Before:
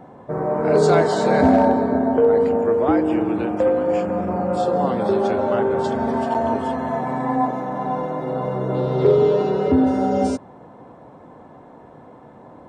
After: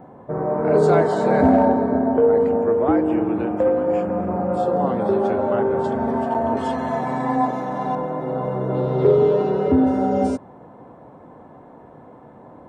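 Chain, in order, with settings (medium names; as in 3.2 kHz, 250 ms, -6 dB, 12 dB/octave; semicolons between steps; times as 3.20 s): peaking EQ 5.3 kHz -11 dB 2 oct, from 6.57 s +5 dB, from 7.95 s -7.5 dB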